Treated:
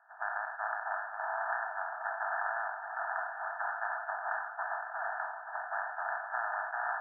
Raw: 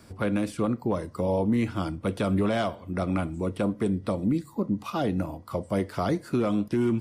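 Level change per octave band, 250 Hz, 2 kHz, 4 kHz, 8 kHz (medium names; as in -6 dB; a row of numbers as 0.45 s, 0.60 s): under -40 dB, +6.5 dB, under -40 dB, no reading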